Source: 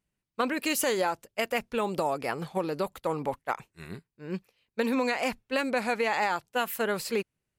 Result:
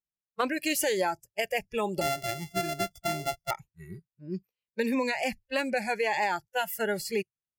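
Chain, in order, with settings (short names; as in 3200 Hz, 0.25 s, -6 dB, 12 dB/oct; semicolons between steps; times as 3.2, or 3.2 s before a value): 2.01–3.51 sample sorter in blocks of 64 samples; spectral noise reduction 22 dB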